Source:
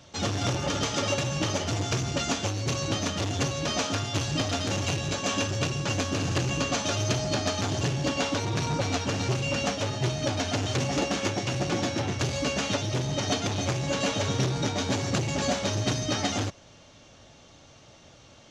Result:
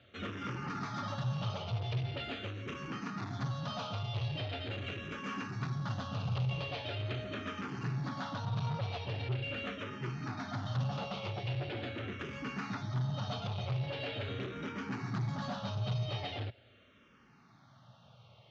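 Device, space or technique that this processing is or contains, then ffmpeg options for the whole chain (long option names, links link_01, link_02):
barber-pole phaser into a guitar amplifier: -filter_complex "[0:a]asplit=2[link_01][link_02];[link_02]afreqshift=-0.42[link_03];[link_01][link_03]amix=inputs=2:normalize=1,asoftclip=type=tanh:threshold=-26.5dB,highpass=90,equalizer=frequency=120:width_type=q:width=4:gain=9,equalizer=frequency=200:width_type=q:width=4:gain=3,equalizer=frequency=310:width_type=q:width=4:gain=-6,equalizer=frequency=550:width_type=q:width=4:gain=-3,equalizer=frequency=1300:width_type=q:width=4:gain=5,lowpass=frequency=3900:width=0.5412,lowpass=frequency=3900:width=1.3066,volume=-5.5dB"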